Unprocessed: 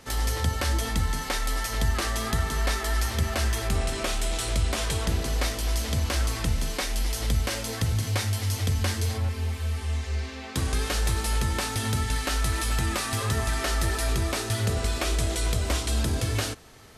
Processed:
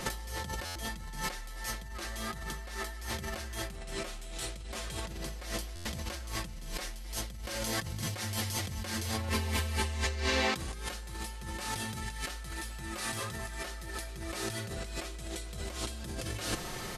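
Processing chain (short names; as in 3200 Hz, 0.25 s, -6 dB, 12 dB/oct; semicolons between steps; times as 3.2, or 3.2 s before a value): comb 5.6 ms, depth 57%; negative-ratio compressor -38 dBFS, ratio -1; stuck buffer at 0.65/5.75, samples 512, times 8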